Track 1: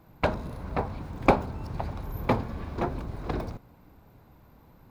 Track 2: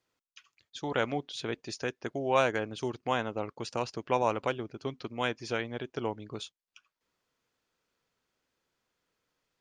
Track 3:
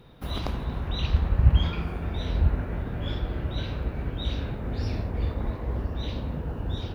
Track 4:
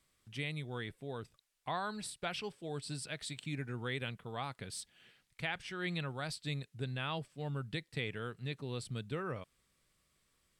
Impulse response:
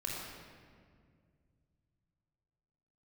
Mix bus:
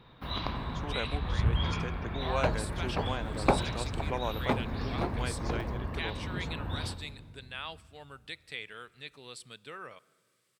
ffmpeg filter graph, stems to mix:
-filter_complex "[0:a]adelay=2200,volume=0.596[s0];[1:a]volume=0.447,asplit=2[s1][s2];[2:a]equalizer=f=125:t=o:w=1:g=4,equalizer=f=250:t=o:w=1:g=6,equalizer=f=1000:t=o:w=1:g=11,equalizer=f=2000:t=o:w=1:g=7,equalizer=f=4000:t=o:w=1:g=11,equalizer=f=8000:t=o:w=1:g=-10,volume=0.266,asplit=2[s3][s4];[s4]volume=0.316[s5];[3:a]highpass=f=1200:p=1,adelay=550,volume=1.19,asplit=2[s6][s7];[s7]volume=0.0708[s8];[s2]apad=whole_len=306328[s9];[s3][s9]sidechaincompress=threshold=0.0141:ratio=8:attack=16:release=426[s10];[4:a]atrim=start_sample=2205[s11];[s5][s8]amix=inputs=2:normalize=0[s12];[s12][s11]afir=irnorm=-1:irlink=0[s13];[s0][s1][s10][s6][s13]amix=inputs=5:normalize=0"

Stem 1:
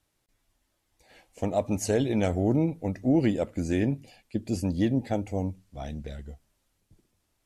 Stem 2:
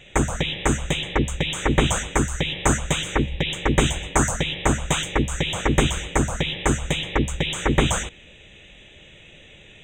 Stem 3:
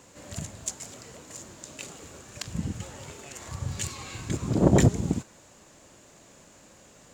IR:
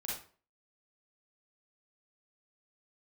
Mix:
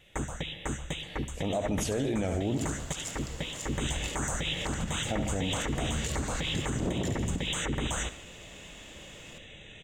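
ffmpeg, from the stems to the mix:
-filter_complex "[0:a]volume=1.41,asplit=3[s0][s1][s2];[s0]atrim=end=2.58,asetpts=PTS-STARTPTS,afade=t=out:st=2.576:d=0.004:c=hsin[s3];[s1]atrim=start=2.58:end=5.08,asetpts=PTS-STARTPTS,volume=0[s4];[s2]atrim=start=5.08,asetpts=PTS-STARTPTS,afade=t=in:d=0.004:c=hsin[s5];[s3][s4][s5]concat=n=3:v=0:a=1,asplit=2[s6][s7];[s7]volume=0.316[s8];[1:a]bandreject=f=380:w=12,volume=0.891,afade=t=in:st=3.66:d=0.33:silence=0.298538,asplit=2[s9][s10];[s10]volume=0.106[s11];[2:a]adelay=2250,volume=1.19,asplit=2[s12][s13];[s13]volume=0.168[s14];[s9][s12]amix=inputs=2:normalize=0,bandreject=f=2400:w=15,acompressor=threshold=0.0631:ratio=6,volume=1[s15];[s8][s11][s14]amix=inputs=3:normalize=0,aecho=0:1:71|142|213|284|355|426:1|0.44|0.194|0.0852|0.0375|0.0165[s16];[s6][s15][s16]amix=inputs=3:normalize=0,alimiter=limit=0.0841:level=0:latency=1:release=59"

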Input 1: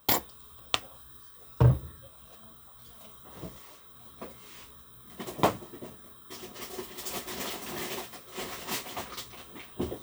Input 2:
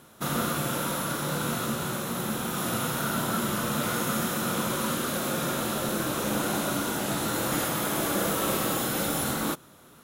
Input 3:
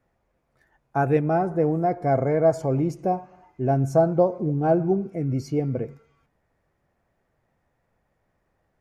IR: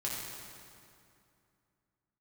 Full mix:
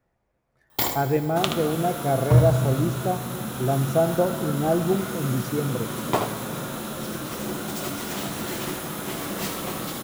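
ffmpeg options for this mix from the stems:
-filter_complex "[0:a]adelay=700,volume=0.794,asplit=3[s0][s1][s2];[s1]volume=0.501[s3];[s2]volume=0.596[s4];[1:a]bandreject=f=60:t=h:w=6,bandreject=f=120:t=h:w=6,acrossover=split=240[s5][s6];[s6]acompressor=threshold=0.0224:ratio=3[s7];[s5][s7]amix=inputs=2:normalize=0,adelay=1150,volume=1[s8];[2:a]volume=0.668,asplit=2[s9][s10];[s10]volume=0.237[s11];[3:a]atrim=start_sample=2205[s12];[s3][s11]amix=inputs=2:normalize=0[s13];[s13][s12]afir=irnorm=-1:irlink=0[s14];[s4]aecho=0:1:76:1[s15];[s0][s8][s9][s14][s15]amix=inputs=5:normalize=0"

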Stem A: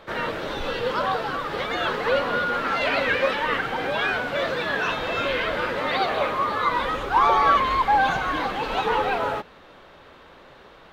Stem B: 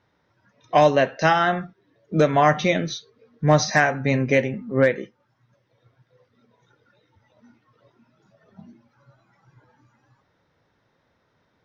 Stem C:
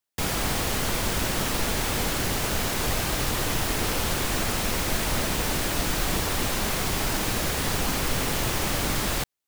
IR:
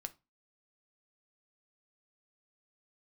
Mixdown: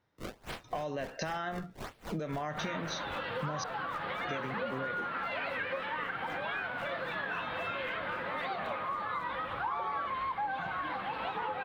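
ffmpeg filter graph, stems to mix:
-filter_complex "[0:a]highpass=78,highshelf=f=4600:g=-11.5,adelay=2500,volume=1.06,asplit=2[s0][s1];[s1]volume=0.631[s2];[1:a]alimiter=limit=0.224:level=0:latency=1,acompressor=threshold=0.0355:ratio=2.5,agate=range=0.355:threshold=0.00141:ratio=16:detection=peak,volume=0.944,asplit=3[s3][s4][s5];[s3]atrim=end=3.64,asetpts=PTS-STARTPTS,afade=t=out:st=3.636:d=0.004:c=hsin[s6];[s4]atrim=start=3.64:end=4.28,asetpts=PTS-STARTPTS,volume=0[s7];[s5]atrim=start=4.28,asetpts=PTS-STARTPTS,afade=t=in:d=0.004:c=hsin[s8];[s6][s7][s8]concat=n=3:v=0:a=1[s9];[2:a]alimiter=limit=0.0891:level=0:latency=1,acrusher=samples=31:mix=1:aa=0.000001:lfo=1:lforange=49.6:lforate=1.4,aeval=exprs='val(0)*pow(10,-30*(0.5-0.5*cos(2*PI*3.8*n/s))/20)':c=same,volume=0.668[s10];[s0][s10]amix=inputs=2:normalize=0,acrossover=split=410|6000[s11][s12][s13];[s11]acompressor=threshold=0.00794:ratio=4[s14];[s12]acompressor=threshold=0.0631:ratio=4[s15];[s13]acompressor=threshold=0.002:ratio=4[s16];[s14][s15][s16]amix=inputs=3:normalize=0,alimiter=level_in=1.68:limit=0.0631:level=0:latency=1:release=460,volume=0.596,volume=1[s17];[3:a]atrim=start_sample=2205[s18];[s2][s18]afir=irnorm=-1:irlink=0[s19];[s9][s17][s19]amix=inputs=3:normalize=0,acompressor=threshold=0.02:ratio=4"

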